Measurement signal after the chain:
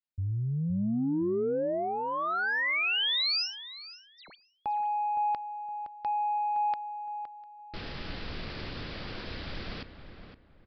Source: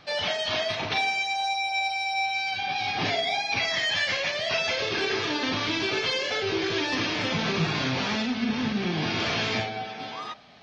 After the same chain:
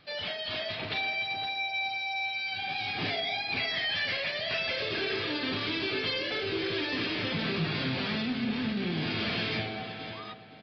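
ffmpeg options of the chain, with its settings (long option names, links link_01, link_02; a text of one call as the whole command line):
ffmpeg -i in.wav -filter_complex "[0:a]equalizer=frequency=890:width_type=o:width=1:gain=-6.5,dynaudnorm=framelen=230:gausssize=7:maxgain=3dB,asoftclip=type=tanh:threshold=-17dB,asplit=2[link_01][link_02];[link_02]adelay=515,lowpass=frequency=1900:poles=1,volume=-9dB,asplit=2[link_03][link_04];[link_04]adelay=515,lowpass=frequency=1900:poles=1,volume=0.29,asplit=2[link_05][link_06];[link_06]adelay=515,lowpass=frequency=1900:poles=1,volume=0.29[link_07];[link_03][link_05][link_07]amix=inputs=3:normalize=0[link_08];[link_01][link_08]amix=inputs=2:normalize=0,aresample=11025,aresample=44100,volume=-5.5dB" out.wav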